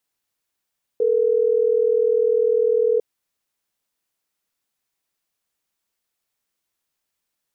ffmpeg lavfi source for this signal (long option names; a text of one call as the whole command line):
ffmpeg -f lavfi -i "aevalsrc='0.126*(sin(2*PI*440*t)+sin(2*PI*480*t))*clip(min(mod(t,6),2-mod(t,6))/0.005,0,1)':duration=3.12:sample_rate=44100" out.wav